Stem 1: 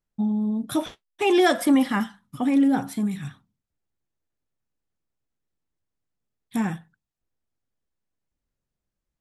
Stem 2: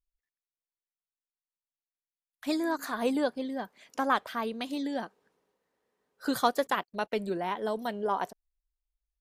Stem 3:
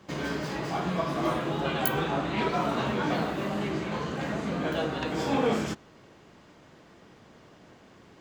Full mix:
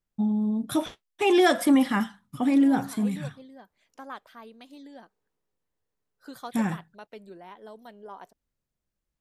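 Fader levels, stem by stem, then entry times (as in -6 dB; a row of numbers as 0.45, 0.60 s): -1.0 dB, -13.5 dB, off; 0.00 s, 0.00 s, off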